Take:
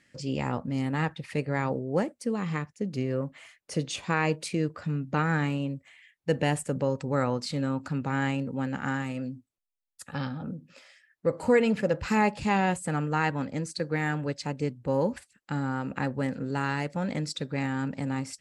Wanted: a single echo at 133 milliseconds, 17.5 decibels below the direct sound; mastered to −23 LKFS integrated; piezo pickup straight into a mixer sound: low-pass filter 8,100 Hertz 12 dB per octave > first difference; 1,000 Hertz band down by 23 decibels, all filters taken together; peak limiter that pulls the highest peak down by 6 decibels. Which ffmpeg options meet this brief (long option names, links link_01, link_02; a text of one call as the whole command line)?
ffmpeg -i in.wav -af "equalizer=frequency=1000:width_type=o:gain=-7.5,alimiter=limit=-19.5dB:level=0:latency=1,lowpass=8100,aderivative,aecho=1:1:133:0.133,volume=24.5dB" out.wav